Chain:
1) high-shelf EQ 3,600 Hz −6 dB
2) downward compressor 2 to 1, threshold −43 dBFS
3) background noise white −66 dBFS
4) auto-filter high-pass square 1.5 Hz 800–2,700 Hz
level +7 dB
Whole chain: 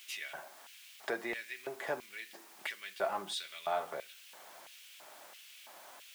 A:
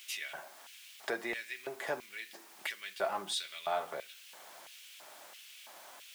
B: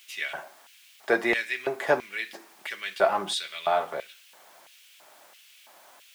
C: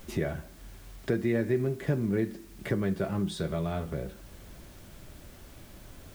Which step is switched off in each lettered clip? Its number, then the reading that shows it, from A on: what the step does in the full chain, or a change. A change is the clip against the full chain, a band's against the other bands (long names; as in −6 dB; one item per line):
1, 8 kHz band +3.5 dB
2, average gain reduction 8.5 dB
4, 125 Hz band +33.0 dB